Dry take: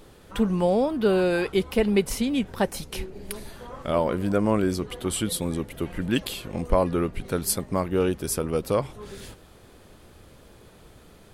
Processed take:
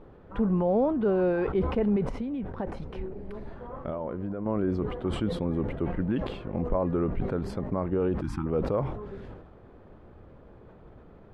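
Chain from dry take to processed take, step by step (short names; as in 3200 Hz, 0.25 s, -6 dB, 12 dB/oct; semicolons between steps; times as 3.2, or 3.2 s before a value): 8.21–8.46 spectral delete 360–760 Hz; limiter -17 dBFS, peak gain reduction 9.5 dB; 1.96–4.46 compressor 5:1, threshold -30 dBFS, peak gain reduction 8 dB; LPF 1200 Hz 12 dB/oct; sustainer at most 58 dB/s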